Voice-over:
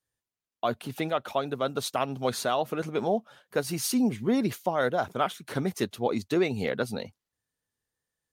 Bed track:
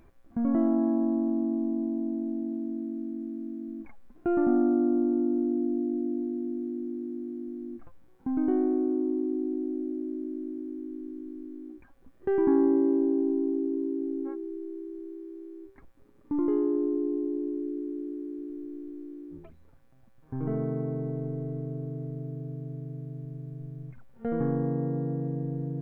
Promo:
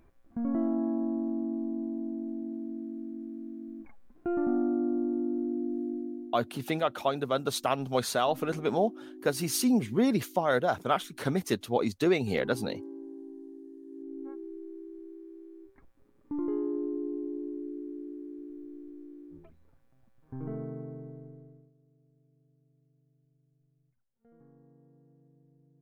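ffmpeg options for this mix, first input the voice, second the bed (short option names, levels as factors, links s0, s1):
-filter_complex "[0:a]adelay=5700,volume=1[s0];[1:a]volume=2.66,afade=t=out:st=5.9:d=0.56:silence=0.199526,afade=t=in:st=13.84:d=0.54:silence=0.223872,afade=t=out:st=20.27:d=1.45:silence=0.0501187[s1];[s0][s1]amix=inputs=2:normalize=0"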